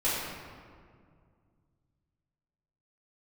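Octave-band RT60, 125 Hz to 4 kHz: 3.4 s, 2.8 s, 2.2 s, 1.9 s, 1.6 s, 1.1 s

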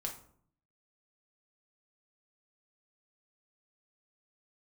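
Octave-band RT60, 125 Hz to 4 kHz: 0.95 s, 0.80 s, 0.65 s, 0.55 s, 0.40 s, 0.35 s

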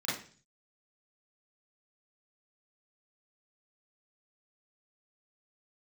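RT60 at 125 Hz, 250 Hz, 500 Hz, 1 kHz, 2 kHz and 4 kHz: 0.75 s, 0.55 s, 0.45 s, 0.40 s, 0.45 s, 0.50 s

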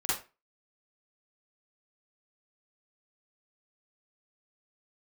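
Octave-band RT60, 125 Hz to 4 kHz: 0.30 s, 0.30 s, 0.30 s, 0.30 s, 0.30 s, 0.25 s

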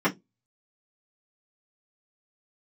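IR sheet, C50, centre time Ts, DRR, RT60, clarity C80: 20.5 dB, 11 ms, -10.0 dB, 0.15 s, 32.5 dB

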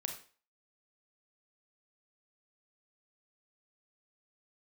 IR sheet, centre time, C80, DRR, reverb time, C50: 20 ms, 12.0 dB, 3.5 dB, 0.40 s, 7.5 dB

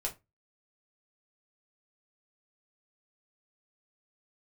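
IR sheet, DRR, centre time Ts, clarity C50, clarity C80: -1.5 dB, 12 ms, 16.0 dB, 25.0 dB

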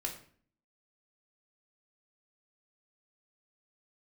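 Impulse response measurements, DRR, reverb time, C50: -0.5 dB, 0.50 s, 8.5 dB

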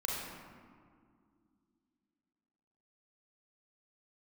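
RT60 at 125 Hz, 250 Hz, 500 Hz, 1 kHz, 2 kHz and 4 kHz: 2.7 s, 3.4 s, 2.3 s, 2.0 s, 1.5 s, 1.0 s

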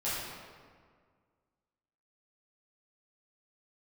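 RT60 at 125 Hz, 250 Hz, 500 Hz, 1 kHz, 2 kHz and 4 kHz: 2.1 s, 2.1 s, 1.9 s, 1.8 s, 1.5 s, 1.1 s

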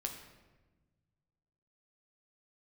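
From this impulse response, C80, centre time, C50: 8.5 dB, 27 ms, 7.0 dB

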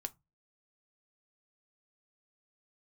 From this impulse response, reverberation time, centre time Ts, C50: 0.20 s, 3 ms, 25.0 dB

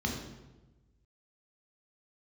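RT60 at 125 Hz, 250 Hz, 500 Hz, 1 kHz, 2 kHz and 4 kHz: 1.6 s, 1.3 s, 1.2 s, 1.0 s, 0.85 s, 0.80 s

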